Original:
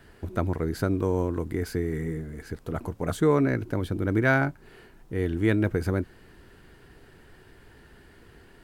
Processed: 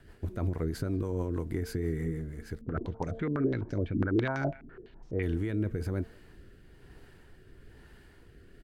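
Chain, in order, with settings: low shelf 110 Hz +5.5 dB; de-hum 225.1 Hz, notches 5; limiter -19 dBFS, peak gain reduction 10 dB; rotary speaker horn 6.3 Hz, later 1.1 Hz, at 2.77; speakerphone echo 0.19 s, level -23 dB; 2.61–5.23 stepped low-pass 12 Hz 250–5800 Hz; gain -2.5 dB

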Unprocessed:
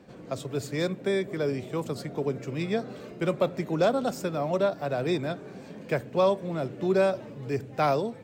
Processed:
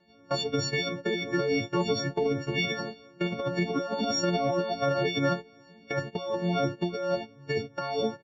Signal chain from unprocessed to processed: frequency quantiser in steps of 4 st; steep low-pass 6400 Hz 96 dB/oct; gate -35 dBFS, range -17 dB; negative-ratio compressor -29 dBFS, ratio -1; endless flanger 2.9 ms +2.8 Hz; gain +4.5 dB

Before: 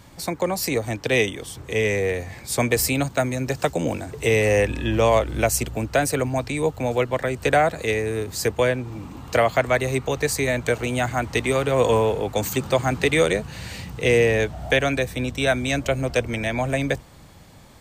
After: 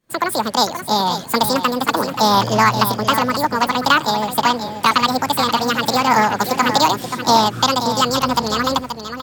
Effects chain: wide varispeed 1.93×; expander -32 dBFS; on a send: feedback echo 0.53 s, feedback 15%, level -9 dB; on the sum: Doppler distortion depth 0.2 ms; gain +4.5 dB

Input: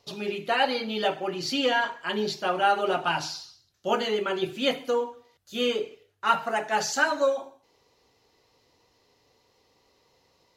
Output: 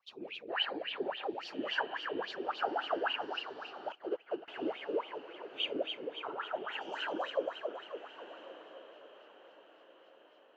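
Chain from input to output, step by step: notch 360 Hz, Q 12; echo with dull and thin repeats by turns 0.136 s, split 1800 Hz, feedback 75%, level -2.5 dB; whisperiser; wah 3.6 Hz 310–3200 Hz, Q 7.8; on a send: diffused feedback echo 1.275 s, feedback 43%, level -15 dB; 3.92–4.48 on the sum: upward expander 2.5:1, over -44 dBFS

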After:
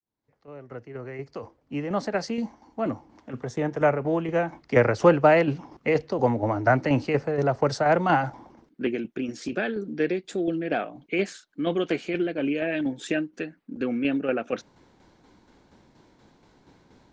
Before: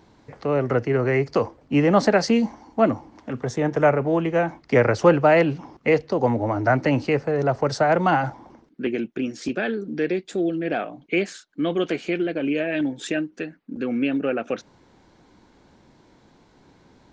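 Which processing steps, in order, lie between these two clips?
opening faded in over 5.09 s; tremolo saw down 4.2 Hz, depth 50%

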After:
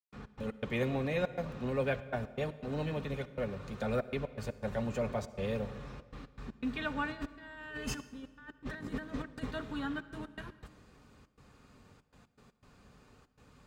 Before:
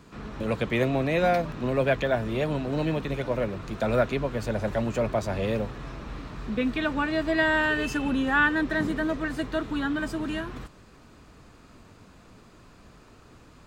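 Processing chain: 7.09–9.51 negative-ratio compressor -31 dBFS, ratio -0.5; step gate ".x.x.xxxxx.xxxxx" 120 bpm -60 dB; notch comb 330 Hz; reverb RT60 1.7 s, pre-delay 51 ms, DRR 15 dB; gain -7 dB

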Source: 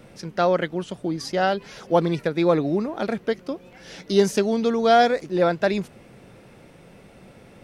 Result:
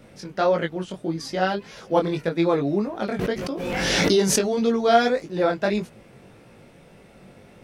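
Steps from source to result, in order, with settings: chorus 1.7 Hz, delay 17.5 ms, depth 4.2 ms; 3.19–4.67 backwards sustainer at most 23 dB/s; gain +2 dB

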